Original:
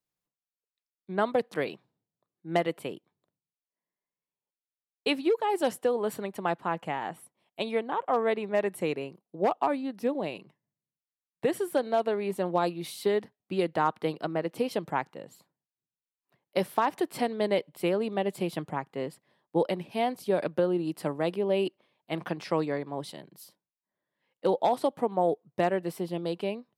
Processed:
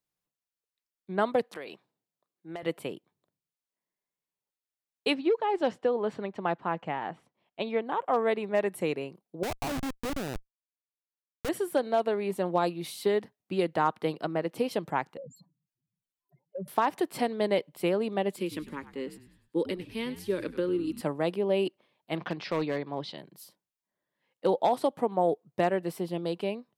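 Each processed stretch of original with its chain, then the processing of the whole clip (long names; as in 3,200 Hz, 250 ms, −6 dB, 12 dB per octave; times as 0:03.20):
0:01.43–0:02.63: high-pass filter 370 Hz 6 dB per octave + downward compressor 5 to 1, threshold −36 dBFS
0:05.14–0:07.87: running median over 3 samples + high-frequency loss of the air 140 metres
0:09.43–0:11.49: hum removal 338.2 Hz, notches 27 + comparator with hysteresis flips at −30.5 dBFS
0:15.17–0:16.68: expanding power law on the bin magnitudes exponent 4 + parametric band 170 Hz +10 dB 1.5 octaves + downward compressor 12 to 1, threshold −33 dBFS
0:18.36–0:21.01: phaser with its sweep stopped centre 300 Hz, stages 4 + echo with shifted repeats 100 ms, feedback 45%, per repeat −72 Hz, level −14 dB
0:22.16–0:23.18: low-pass filter 4,500 Hz 24 dB per octave + high-shelf EQ 3,200 Hz +8.5 dB + gain into a clipping stage and back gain 23 dB
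whole clip: no processing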